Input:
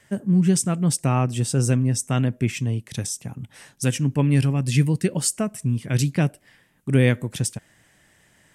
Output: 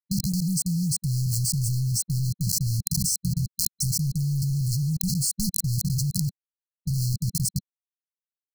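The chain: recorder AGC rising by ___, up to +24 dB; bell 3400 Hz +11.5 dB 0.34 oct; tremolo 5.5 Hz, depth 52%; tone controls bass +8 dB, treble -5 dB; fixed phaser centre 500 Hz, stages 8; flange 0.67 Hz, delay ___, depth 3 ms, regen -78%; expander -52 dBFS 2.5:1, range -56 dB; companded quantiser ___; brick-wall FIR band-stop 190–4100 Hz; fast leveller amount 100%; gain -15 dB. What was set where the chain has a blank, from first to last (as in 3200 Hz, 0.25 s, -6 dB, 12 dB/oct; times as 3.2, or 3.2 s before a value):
11 dB/s, 4.4 ms, 2-bit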